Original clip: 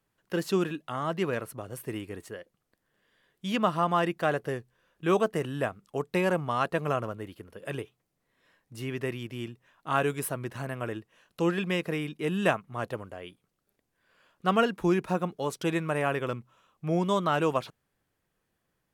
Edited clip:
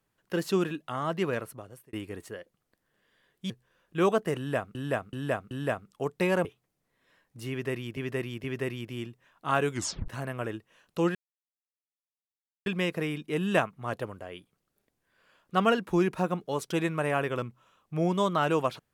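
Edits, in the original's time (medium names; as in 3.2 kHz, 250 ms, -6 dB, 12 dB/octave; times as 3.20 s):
1.37–1.93 s: fade out
3.50–4.58 s: delete
5.45–5.83 s: loop, 4 plays
6.39–7.81 s: delete
8.86–9.33 s: loop, 3 plays
10.14 s: tape stop 0.36 s
11.57 s: insert silence 1.51 s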